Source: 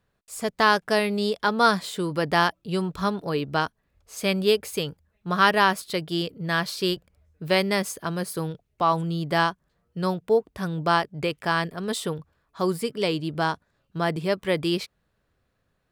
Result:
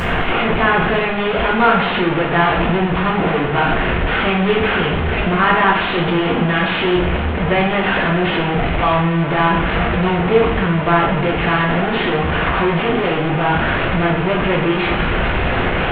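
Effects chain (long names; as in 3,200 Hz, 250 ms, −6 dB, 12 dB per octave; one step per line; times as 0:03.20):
linear delta modulator 16 kbit/s, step −16 dBFS
coupled-rooms reverb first 0.67 s, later 3.4 s, from −19 dB, DRR −2.5 dB
level +1.5 dB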